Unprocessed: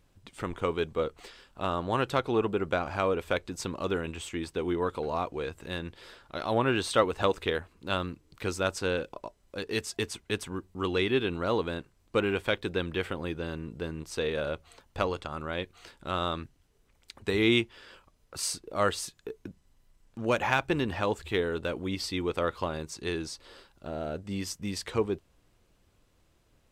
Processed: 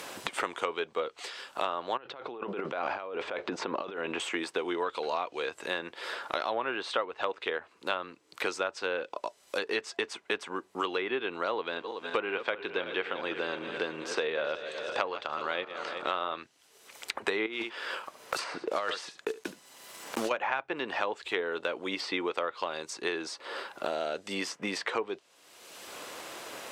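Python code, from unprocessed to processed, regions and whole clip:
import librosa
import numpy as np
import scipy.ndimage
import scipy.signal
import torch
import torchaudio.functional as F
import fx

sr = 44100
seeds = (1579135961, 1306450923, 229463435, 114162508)

y = fx.chain(x, sr, fx.over_compress(threshold_db=-38.0, ratio=-1.0),
    fx.spacing_loss(db_at_10k=39), at=(1.97, 4.2))
y = fx.chain(y, sr, fx.reverse_delay_fb(ms=187, feedback_pct=68, wet_db=-13.0),
    fx.lowpass(hz=5500.0, slope=12), at=(11.54, 16.38))
y = fx.chain(y, sr, fx.block_float(bits=5),
    fx.echo_single(ms=72, db=-17.5),
    fx.over_compress(threshold_db=-30.0, ratio=-1.0), at=(17.46, 20.31))
y = scipy.signal.sosfilt(scipy.signal.butter(2, 530.0, 'highpass', fs=sr, output='sos'), y)
y = fx.env_lowpass_down(y, sr, base_hz=1900.0, full_db=-26.0)
y = fx.band_squash(y, sr, depth_pct=100)
y = y * librosa.db_to_amplitude(1.5)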